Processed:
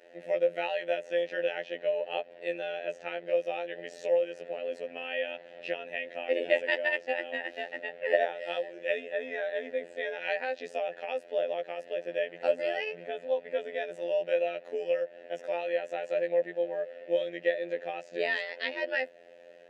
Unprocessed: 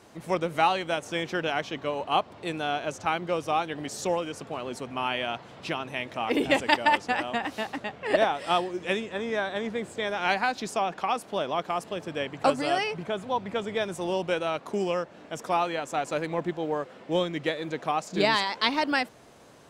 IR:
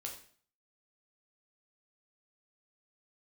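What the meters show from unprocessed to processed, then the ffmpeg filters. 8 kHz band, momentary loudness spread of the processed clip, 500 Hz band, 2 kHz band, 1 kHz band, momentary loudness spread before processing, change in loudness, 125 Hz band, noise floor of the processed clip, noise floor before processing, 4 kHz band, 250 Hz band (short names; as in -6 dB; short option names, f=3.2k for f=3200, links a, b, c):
under -15 dB, 8 LU, 0.0 dB, -3.5 dB, -13.0 dB, 9 LU, -4.0 dB, under -20 dB, -53 dBFS, -50 dBFS, -9.5 dB, -13.5 dB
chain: -filter_complex "[0:a]asplit=2[a][b];[b]acompressor=threshold=-33dB:ratio=12,volume=-1dB[c];[a][c]amix=inputs=2:normalize=0,asplit=3[d][e][f];[d]bandpass=f=530:t=q:w=8,volume=0dB[g];[e]bandpass=f=1.84k:t=q:w=8,volume=-6dB[h];[f]bandpass=f=2.48k:t=q:w=8,volume=-9dB[i];[g][h][i]amix=inputs=3:normalize=0,afreqshift=21,afftfilt=real='hypot(re,im)*cos(PI*b)':imag='0':win_size=2048:overlap=0.75,volume=7.5dB"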